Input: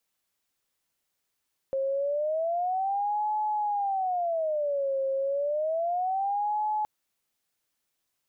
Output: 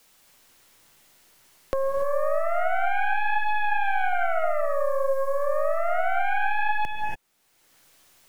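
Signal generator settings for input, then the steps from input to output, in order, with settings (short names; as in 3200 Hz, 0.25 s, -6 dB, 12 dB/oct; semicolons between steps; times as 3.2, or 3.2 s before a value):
siren wail 538–852 Hz 0.3/s sine -25 dBFS 5.12 s
tracing distortion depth 0.47 ms; non-linear reverb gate 0.31 s rising, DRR 1 dB; three-band squash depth 70%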